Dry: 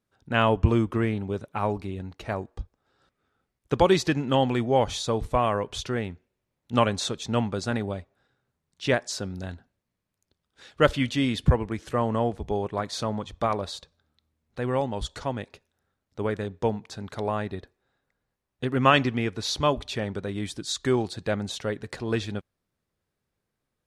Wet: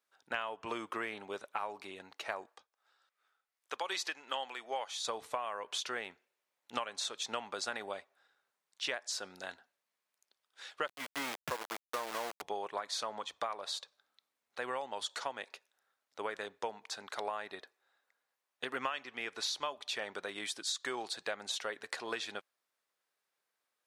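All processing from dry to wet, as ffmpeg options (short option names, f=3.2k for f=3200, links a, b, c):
-filter_complex "[0:a]asettb=1/sr,asplit=3[a][b][c];[a]atrim=end=2.494[d];[b]atrim=start=2.49:end=5.05,asetpts=PTS-STARTPTS,afade=t=in:d=0.004:c=qsin,afade=t=out:st=2.556:d=0.004:c=qsin,highpass=f=690:p=1,tremolo=f=2.6:d=0.58[e];[c]atrim=start=5.046[f];[d][e]acrossfade=d=0.004:c1=hsin:c2=qsin[g];[g][f]acrossfade=d=0.004:c1=qsin:c2=hsin,asettb=1/sr,asplit=3[h][i][j];[h]atrim=end=10.884[k];[i]atrim=start=10.88:end=12.42,asetpts=PTS-STARTPTS,afade=t=in:d=0.004:c=qsin,afade=t=out:st=1.536:d=0.004:c=qsin,lowpass=1.7k,equalizer=f=760:w=6.8:g=-8.5,aeval=exprs='val(0)*gte(abs(val(0)),0.0447)':c=same[l];[j]atrim=start=12.416[m];[k][l]acrossfade=d=0.004:c1=hsin:c2=qsin[n];[n][m]acrossfade=d=0.004:c1=qsin:c2=hsin,highpass=780,acompressor=threshold=-34dB:ratio=16,volume=1dB"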